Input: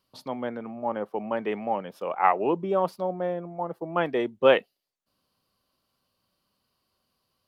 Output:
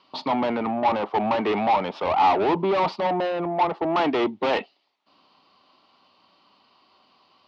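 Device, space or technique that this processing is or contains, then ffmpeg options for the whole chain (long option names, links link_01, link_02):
overdrive pedal into a guitar cabinet: -filter_complex "[0:a]asplit=2[link_01][link_02];[link_02]highpass=frequency=720:poles=1,volume=34dB,asoftclip=type=tanh:threshold=-7dB[link_03];[link_01][link_03]amix=inputs=2:normalize=0,lowpass=frequency=2700:poles=1,volume=-6dB,highpass=78,equalizer=frequency=130:width_type=q:width=4:gain=-7,equalizer=frequency=290:width_type=q:width=4:gain=4,equalizer=frequency=510:width_type=q:width=4:gain=-7,equalizer=frequency=870:width_type=q:width=4:gain=5,equalizer=frequency=1600:width_type=q:width=4:gain=-9,lowpass=frequency=4500:width=0.5412,lowpass=frequency=4500:width=1.3066,volume=-6dB"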